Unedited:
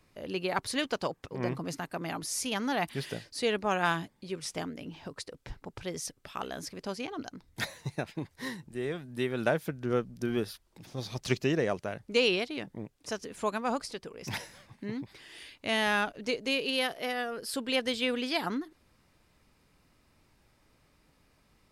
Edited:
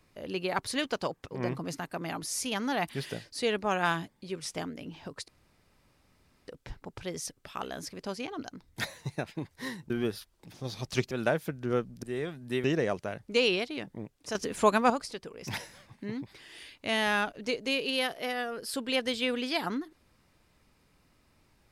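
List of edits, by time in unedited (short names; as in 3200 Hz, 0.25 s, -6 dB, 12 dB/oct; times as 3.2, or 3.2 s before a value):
5.28 insert room tone 1.20 s
8.7–9.31 swap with 10.23–11.44
13.15–13.7 gain +8 dB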